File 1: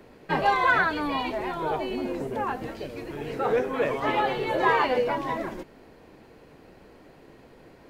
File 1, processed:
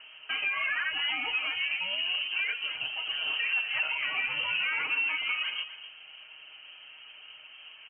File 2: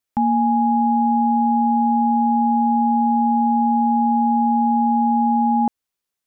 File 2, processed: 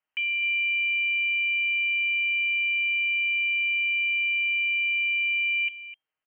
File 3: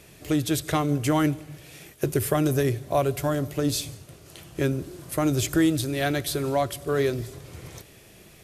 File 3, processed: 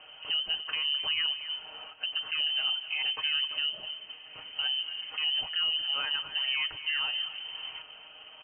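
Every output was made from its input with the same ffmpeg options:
-af "aecho=1:1:6.2:0.63,alimiter=limit=-22dB:level=0:latency=1:release=244,aecho=1:1:254:0.211,lowpass=f=2.7k:t=q:w=0.5098,lowpass=f=2.7k:t=q:w=0.6013,lowpass=f=2.7k:t=q:w=0.9,lowpass=f=2.7k:t=q:w=2.563,afreqshift=-3200"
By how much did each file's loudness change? -2.5, -5.0, -4.0 LU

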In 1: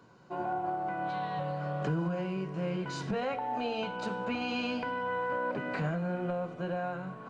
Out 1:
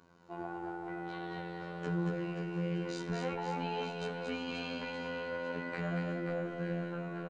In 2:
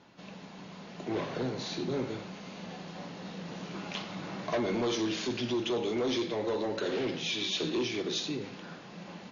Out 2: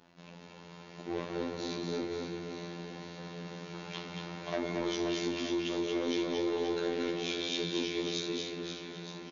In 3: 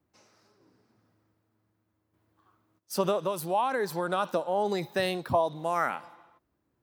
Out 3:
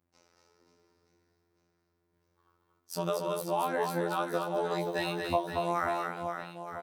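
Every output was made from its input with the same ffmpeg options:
-af "afftfilt=real='hypot(re,im)*cos(PI*b)':imag='0':win_size=2048:overlap=0.75,aecho=1:1:230|529|917.7|1423|2080:0.631|0.398|0.251|0.158|0.1,volume=-1dB"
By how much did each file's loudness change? -4.0, -2.0, -3.0 LU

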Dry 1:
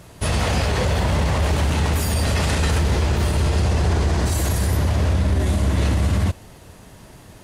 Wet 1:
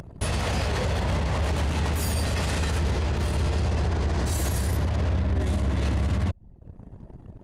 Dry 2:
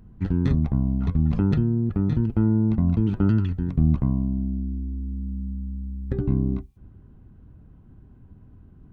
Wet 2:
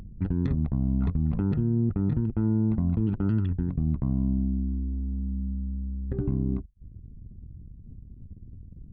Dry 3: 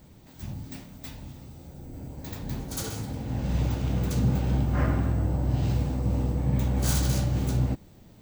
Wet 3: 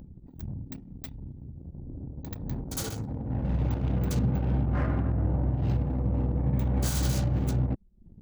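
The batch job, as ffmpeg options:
-af "acompressor=mode=upward:threshold=-33dB:ratio=2.5,alimiter=limit=-17dB:level=0:latency=1:release=173,anlmdn=2.51"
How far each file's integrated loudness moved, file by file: -5.5, -3.5, -1.5 LU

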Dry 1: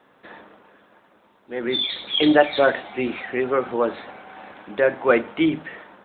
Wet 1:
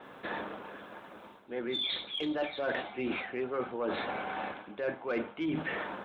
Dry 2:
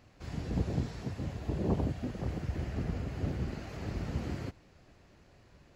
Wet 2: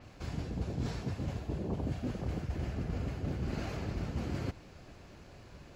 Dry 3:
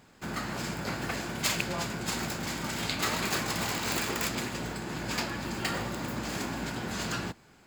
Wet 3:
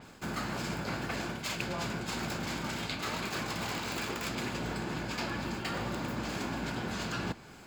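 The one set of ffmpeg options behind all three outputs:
-af "acontrast=88,bandreject=f=1.9k:w=17,areverse,acompressor=threshold=-32dB:ratio=8,areverse,adynamicequalizer=threshold=0.002:dfrequency=5800:dqfactor=0.7:tfrequency=5800:tqfactor=0.7:attack=5:release=100:ratio=0.375:range=3.5:mode=cutabove:tftype=highshelf"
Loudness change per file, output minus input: -14.0, -1.5, -3.5 LU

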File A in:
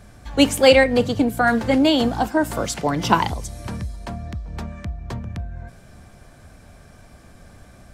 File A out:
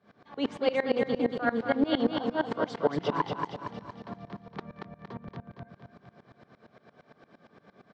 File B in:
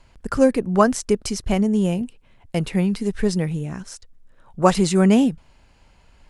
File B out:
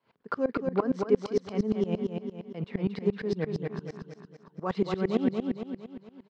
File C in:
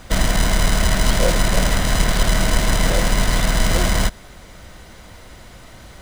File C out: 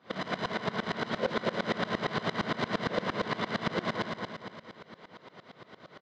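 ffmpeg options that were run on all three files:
-filter_complex "[0:a]alimiter=limit=-12dB:level=0:latency=1:release=24,highpass=f=150:w=0.5412,highpass=f=150:w=1.3066,equalizer=f=430:t=q:w=4:g=7,equalizer=f=1.1k:t=q:w=4:g=5,equalizer=f=2.6k:t=q:w=4:g=-4,lowpass=f=4.1k:w=0.5412,lowpass=f=4.1k:w=1.3066,asplit=2[a][b];[b]aecho=0:1:231|462|693|924|1155|1386:0.596|0.286|0.137|0.0659|0.0316|0.0152[c];[a][c]amix=inputs=2:normalize=0,aeval=exprs='val(0)*pow(10,-22*if(lt(mod(-8.7*n/s,1),2*abs(-8.7)/1000),1-mod(-8.7*n/s,1)/(2*abs(-8.7)/1000),(mod(-8.7*n/s,1)-2*abs(-8.7)/1000)/(1-2*abs(-8.7)/1000))/20)':c=same,volume=-2.5dB"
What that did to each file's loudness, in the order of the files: -10.5, -10.0, -14.0 LU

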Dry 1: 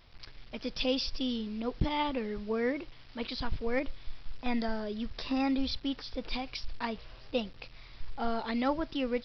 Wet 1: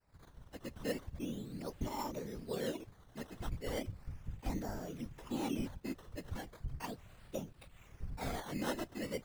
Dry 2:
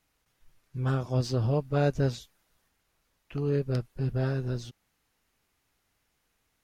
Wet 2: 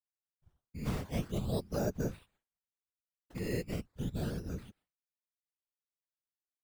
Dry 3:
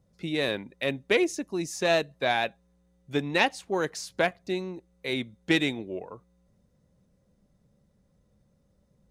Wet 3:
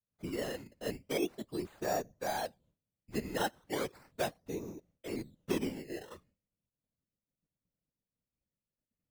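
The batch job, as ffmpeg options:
-filter_complex "[0:a]agate=range=-33dB:threshold=-53dB:ratio=3:detection=peak,acrossover=split=630|1700[a][b][c];[c]acompressor=threshold=-49dB:ratio=16[d];[a][b][d]amix=inputs=3:normalize=0,acrusher=samples=13:mix=1:aa=0.000001:lfo=1:lforange=13:lforate=0.37,afftfilt=real='hypot(re,im)*cos(2*PI*random(0))':imag='hypot(re,im)*sin(2*PI*random(1))':win_size=512:overlap=0.75,volume=-2dB"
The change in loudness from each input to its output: -8.5, -8.0, -10.0 LU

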